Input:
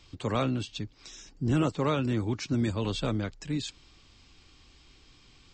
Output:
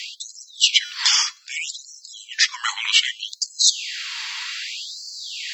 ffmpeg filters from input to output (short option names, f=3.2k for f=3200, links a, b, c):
-af "bandreject=f=315.3:t=h:w=4,bandreject=f=630.6:t=h:w=4,bandreject=f=945.9:t=h:w=4,bandreject=f=1.2612k:t=h:w=4,bandreject=f=1.5765k:t=h:w=4,bandreject=f=1.8918k:t=h:w=4,bandreject=f=2.2071k:t=h:w=4,bandreject=f=2.5224k:t=h:w=4,bandreject=f=2.8377k:t=h:w=4,bandreject=f=3.153k:t=h:w=4,bandreject=f=3.4683k:t=h:w=4,bandreject=f=3.7836k:t=h:w=4,bandreject=f=4.0989k:t=h:w=4,bandreject=f=4.4142k:t=h:w=4,bandreject=f=4.7295k:t=h:w=4,bandreject=f=5.0448k:t=h:w=4,bandreject=f=5.3601k:t=h:w=4,bandreject=f=5.6754k:t=h:w=4,bandreject=f=5.9907k:t=h:w=4,bandreject=f=6.306k:t=h:w=4,bandreject=f=6.6213k:t=h:w=4,bandreject=f=6.9366k:t=h:w=4,bandreject=f=7.2519k:t=h:w=4,bandreject=f=7.5672k:t=h:w=4,bandreject=f=7.8825k:t=h:w=4,bandreject=f=8.1978k:t=h:w=4,bandreject=f=8.5131k:t=h:w=4,bandreject=f=8.8284k:t=h:w=4,bandreject=f=9.1437k:t=h:w=4,bandreject=f=9.459k:t=h:w=4,bandreject=f=9.7743k:t=h:w=4,bandreject=f=10.0896k:t=h:w=4,bandreject=f=10.4049k:t=h:w=4,bandreject=f=10.7202k:t=h:w=4,bandreject=f=11.0355k:t=h:w=4,bandreject=f=11.3508k:t=h:w=4,bandreject=f=11.6661k:t=h:w=4,bandreject=f=11.9814k:t=h:w=4,bandreject=f=12.2967k:t=h:w=4,bandreject=f=12.612k:t=h:w=4,areverse,acompressor=threshold=-39dB:ratio=5,areverse,afreqshift=-450,apsyclip=34.5dB,afftfilt=real='re*gte(b*sr/1024,790*pow(4200/790,0.5+0.5*sin(2*PI*0.64*pts/sr)))':imag='im*gte(b*sr/1024,790*pow(4200/790,0.5+0.5*sin(2*PI*0.64*pts/sr)))':win_size=1024:overlap=0.75,volume=-3dB"